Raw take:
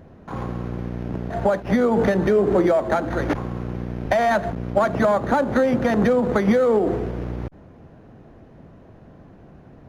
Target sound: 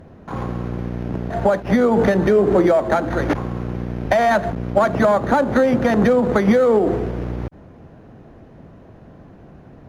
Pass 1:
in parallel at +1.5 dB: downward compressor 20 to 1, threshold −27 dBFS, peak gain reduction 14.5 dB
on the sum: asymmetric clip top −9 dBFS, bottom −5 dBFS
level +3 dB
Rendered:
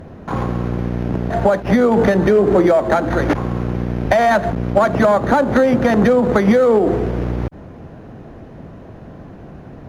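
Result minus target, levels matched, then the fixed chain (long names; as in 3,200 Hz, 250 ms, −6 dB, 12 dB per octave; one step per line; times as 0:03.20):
downward compressor: peak gain reduction +14.5 dB
asymmetric clip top −9 dBFS, bottom −5 dBFS
level +3 dB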